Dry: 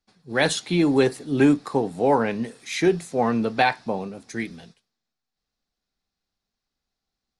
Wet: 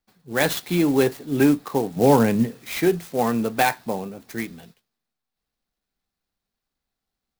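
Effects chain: 1.96–2.71 bell 120 Hz +11 dB 2.8 oct; clock jitter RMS 0.035 ms

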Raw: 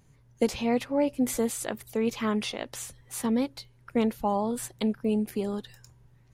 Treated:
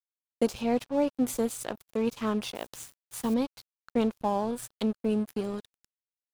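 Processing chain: 2.55–3.34 requantised 8-bit, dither triangular; crossover distortion -40.5 dBFS; dynamic EQ 2000 Hz, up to -7 dB, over -55 dBFS, Q 3.4

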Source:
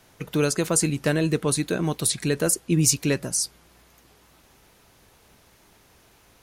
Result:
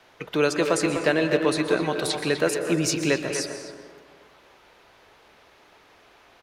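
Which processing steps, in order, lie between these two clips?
three-band isolator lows -13 dB, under 340 Hz, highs -17 dB, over 4600 Hz; speakerphone echo 0.25 s, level -6 dB; plate-style reverb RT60 1.8 s, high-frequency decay 0.4×, pre-delay 0.11 s, DRR 8 dB; gain +4 dB

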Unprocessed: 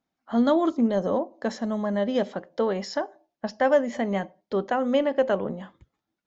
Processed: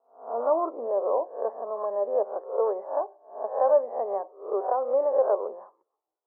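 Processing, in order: spectral swells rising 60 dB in 0.44 s; elliptic band-pass 410–1100 Hz, stop band 60 dB

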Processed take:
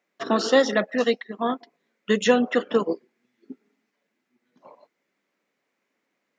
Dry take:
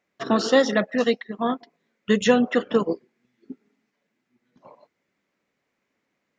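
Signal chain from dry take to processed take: HPF 220 Hz 12 dB/oct

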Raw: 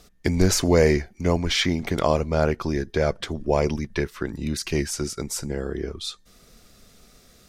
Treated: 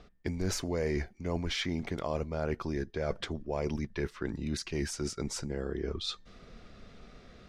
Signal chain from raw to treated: low-pass opened by the level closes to 3000 Hz, open at -20.5 dBFS; high shelf 5800 Hz -7 dB; reverse; compressor 4:1, threshold -35 dBFS, peak gain reduction 18 dB; reverse; gain +2.5 dB

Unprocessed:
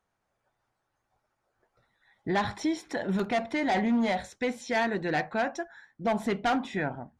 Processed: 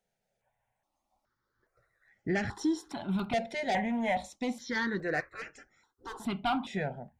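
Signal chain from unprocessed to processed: 5.2–6.2 spectral gate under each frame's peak -15 dB weak; step phaser 2.4 Hz 300–3700 Hz

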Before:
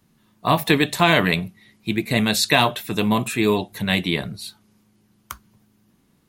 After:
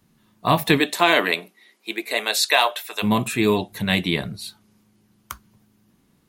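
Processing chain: 0.79–3.02 HPF 240 Hz -> 580 Hz 24 dB/oct

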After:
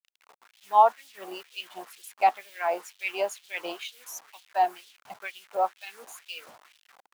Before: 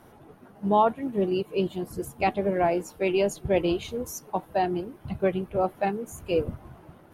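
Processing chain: level-crossing sampler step -43 dBFS; LFO high-pass sine 2.1 Hz 740–3400 Hz; gain -2.5 dB

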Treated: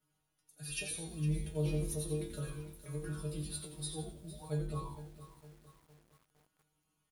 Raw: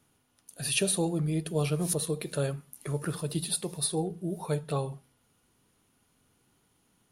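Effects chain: metallic resonator 150 Hz, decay 0.4 s, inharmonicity 0.002; frequency-shifting echo 87 ms, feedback 31%, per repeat -110 Hz, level -7.5 dB; lo-fi delay 0.458 s, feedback 55%, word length 9-bit, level -13.5 dB

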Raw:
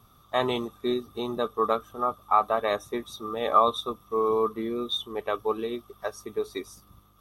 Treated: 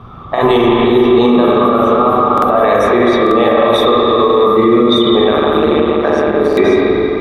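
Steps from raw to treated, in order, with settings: low-pass opened by the level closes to 2400 Hz, open at -22 dBFS; negative-ratio compressor -28 dBFS, ratio -0.5; bell 7100 Hz -8 dB 1.9 oct; reverb RT60 3.3 s, pre-delay 37 ms, DRR -5 dB; 5.31–6.55 AM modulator 150 Hz, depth 60%; stuck buffer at 2.33/3.22/6.48, samples 2048, times 1; maximiser +21 dB; gain -1 dB

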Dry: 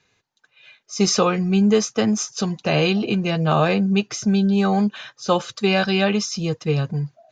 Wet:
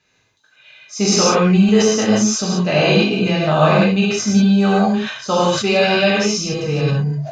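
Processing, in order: non-linear reverb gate 0.2 s flat, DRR -6.5 dB; sustainer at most 74 dB/s; gain -2 dB

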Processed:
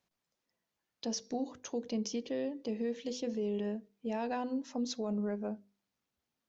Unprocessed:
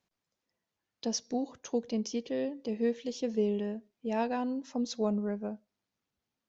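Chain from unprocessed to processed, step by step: notches 50/100/150/200/250/300/350/400/450/500 Hz; limiter -27 dBFS, peak gain reduction 8.5 dB

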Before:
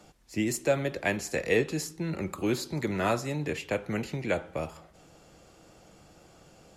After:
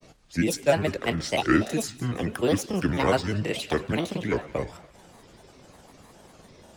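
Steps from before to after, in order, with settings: grains, spray 24 ms, pitch spread up and down by 7 st; thin delay 0.178 s, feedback 49%, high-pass 2000 Hz, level -16 dB; gain +5.5 dB

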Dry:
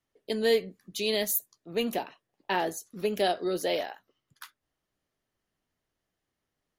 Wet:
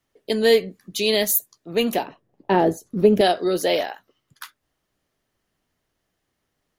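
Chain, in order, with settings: 2.06–3.21 tilt shelf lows +10 dB, about 880 Hz; gain +8 dB

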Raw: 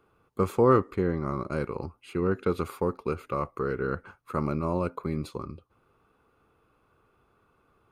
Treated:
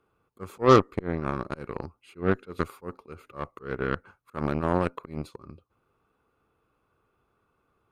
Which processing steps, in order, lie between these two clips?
auto swell 0.14 s; added harmonics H 7 -20 dB, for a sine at -10.5 dBFS; gain +5 dB

